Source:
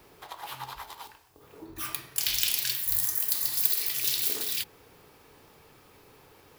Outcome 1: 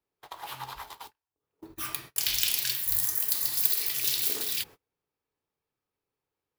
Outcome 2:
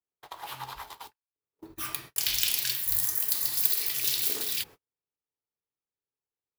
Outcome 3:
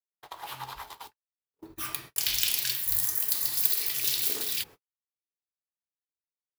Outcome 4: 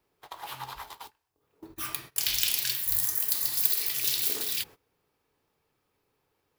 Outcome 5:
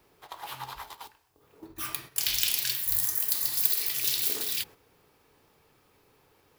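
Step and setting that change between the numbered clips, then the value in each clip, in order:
noise gate, range: −33, −46, −59, −20, −8 decibels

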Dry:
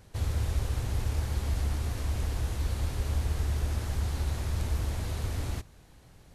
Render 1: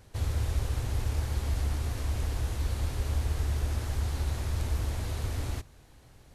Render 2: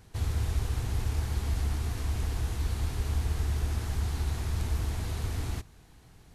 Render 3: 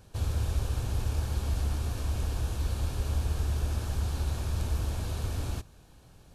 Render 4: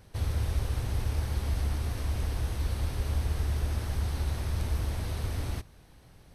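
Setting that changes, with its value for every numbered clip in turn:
notch filter, centre frequency: 180, 560, 2,000, 7,100 Hertz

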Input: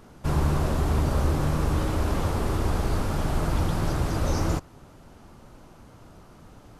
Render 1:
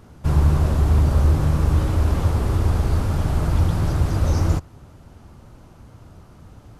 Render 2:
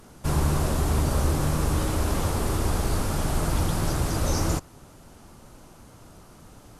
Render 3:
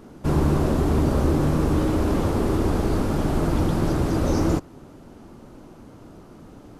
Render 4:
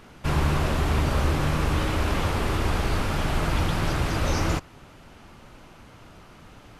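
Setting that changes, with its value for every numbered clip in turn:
parametric band, centre frequency: 82, 10,000, 300, 2,500 Hertz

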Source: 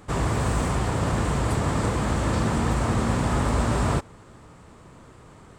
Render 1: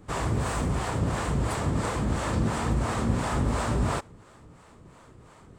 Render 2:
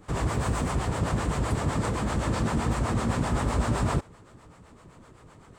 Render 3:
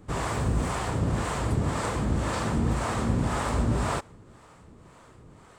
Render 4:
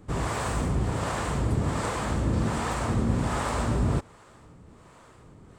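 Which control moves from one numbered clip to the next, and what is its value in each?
two-band tremolo in antiphase, speed: 2.9, 7.8, 1.9, 1.3 Hertz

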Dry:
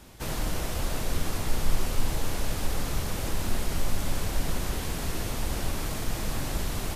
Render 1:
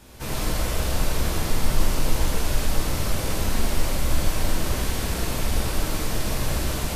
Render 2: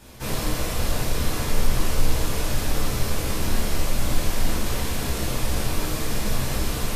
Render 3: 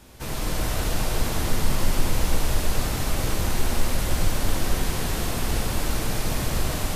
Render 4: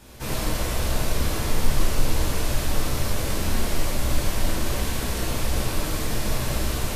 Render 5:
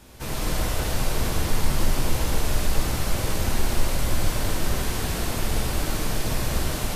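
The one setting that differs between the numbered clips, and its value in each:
reverb whose tail is shaped and stops, gate: 210, 90, 520, 130, 330 milliseconds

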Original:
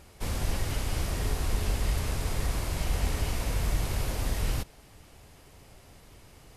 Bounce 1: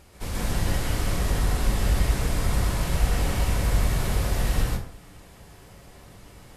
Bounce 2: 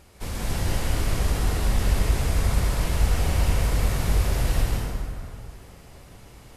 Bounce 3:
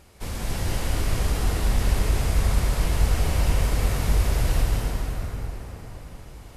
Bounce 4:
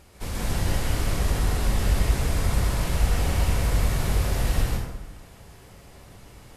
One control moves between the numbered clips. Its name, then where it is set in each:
dense smooth reverb, RT60: 0.54, 2.4, 5, 1.1 seconds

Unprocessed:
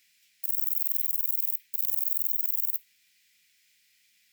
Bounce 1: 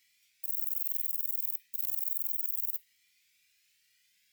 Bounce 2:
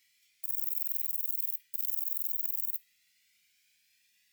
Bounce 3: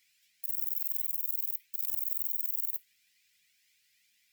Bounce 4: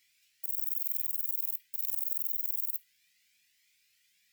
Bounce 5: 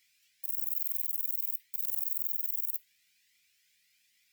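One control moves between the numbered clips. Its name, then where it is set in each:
flanger whose copies keep moving one way, speed: 0.34, 0.21, 1.9, 0.83, 1.2 Hertz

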